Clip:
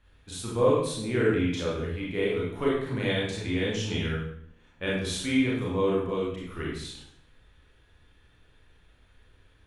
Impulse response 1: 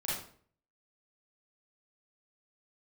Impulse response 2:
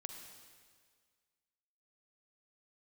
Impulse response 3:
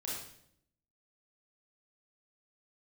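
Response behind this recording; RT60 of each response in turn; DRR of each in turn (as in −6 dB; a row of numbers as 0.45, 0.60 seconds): 3; 0.50, 1.8, 0.70 seconds; −8.5, 4.5, −5.5 decibels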